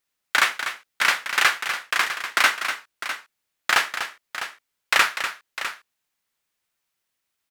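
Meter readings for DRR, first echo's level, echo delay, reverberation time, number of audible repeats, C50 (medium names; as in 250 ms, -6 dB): no reverb, -9.5 dB, 245 ms, no reverb, 2, no reverb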